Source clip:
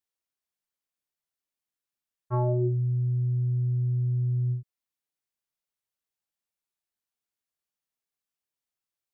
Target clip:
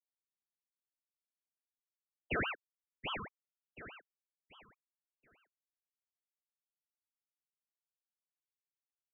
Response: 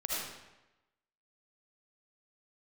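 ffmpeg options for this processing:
-af "highpass=frequency=990:width=0.5412,highpass=frequency=990:width=1.3066,afftfilt=real='re*gte(hypot(re,im),0.0282)':imag='im*gte(hypot(re,im),0.0282)':win_size=1024:overlap=0.75,lowpass=1300,aemphasis=mode=production:type=75fm,alimiter=level_in=15dB:limit=-24dB:level=0:latency=1:release=210,volume=-15dB,aecho=1:1:731|1462|2193|2924:0.531|0.165|0.051|0.0158,aeval=exprs='val(0)*sin(2*PI*1300*n/s+1300*0.7/4.8*sin(2*PI*4.8*n/s))':channel_layout=same,volume=15.5dB"

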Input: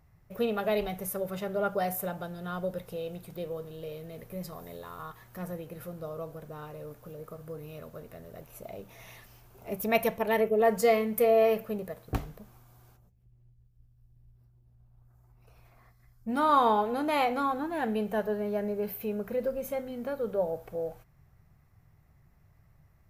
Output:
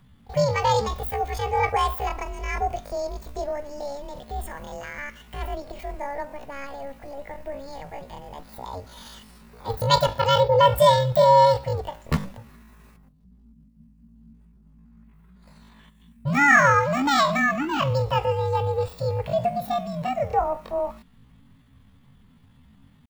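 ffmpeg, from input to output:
ffmpeg -i in.wav -af "afreqshift=-150,asetrate=80880,aresample=44100,atempo=0.545254,volume=7.5dB" out.wav

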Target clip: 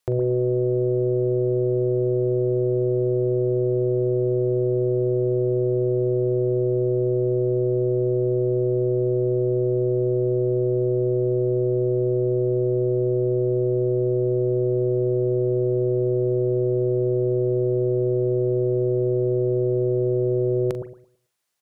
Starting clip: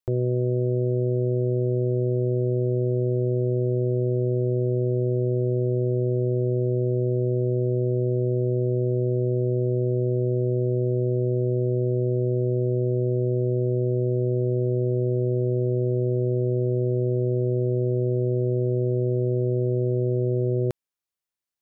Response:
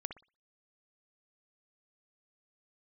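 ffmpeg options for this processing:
-filter_complex "[0:a]highpass=frequency=160:poles=1,equalizer=frequency=270:width=3.7:gain=-7,alimiter=level_in=3dB:limit=-24dB:level=0:latency=1:release=19,volume=-3dB,asplit=2[link_01][link_02];[link_02]adelay=42,volume=-12dB[link_03];[link_01][link_03]amix=inputs=2:normalize=0,asplit=2[link_04][link_05];[1:a]atrim=start_sample=2205,asetrate=23373,aresample=44100[link_06];[link_05][link_06]afir=irnorm=-1:irlink=0,volume=6.5dB[link_07];[link_04][link_07]amix=inputs=2:normalize=0,volume=3dB"

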